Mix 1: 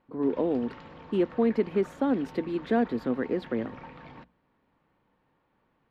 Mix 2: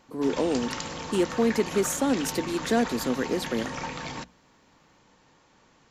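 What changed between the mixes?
background +9.0 dB; master: remove air absorption 440 m

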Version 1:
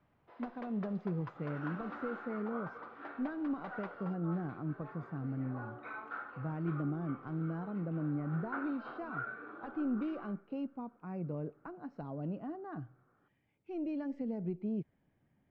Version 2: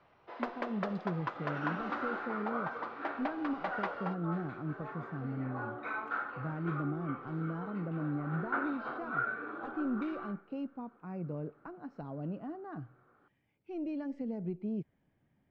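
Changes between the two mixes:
first sound +11.5 dB; second sound +6.5 dB; master: add high shelf 4800 Hz +4.5 dB

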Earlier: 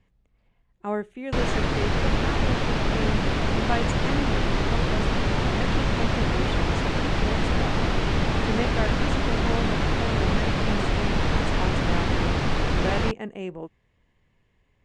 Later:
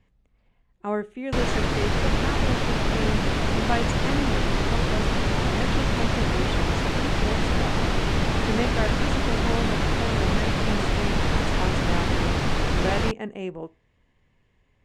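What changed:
background: remove air absorption 50 m; reverb: on, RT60 0.35 s

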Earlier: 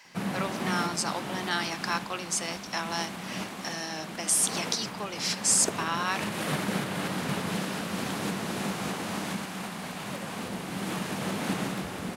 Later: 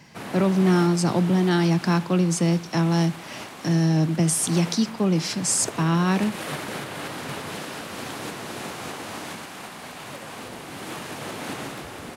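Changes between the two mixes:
speech: remove HPF 950 Hz 12 dB/oct; background: add bell 190 Hz -13 dB 0.35 oct

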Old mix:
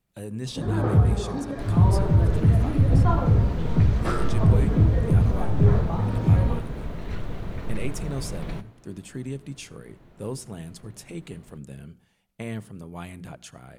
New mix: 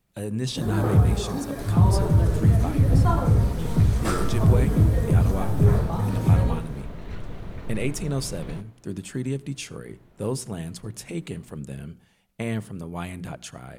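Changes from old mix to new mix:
speech +5.0 dB; first sound: remove air absorption 150 m; second sound -3.5 dB

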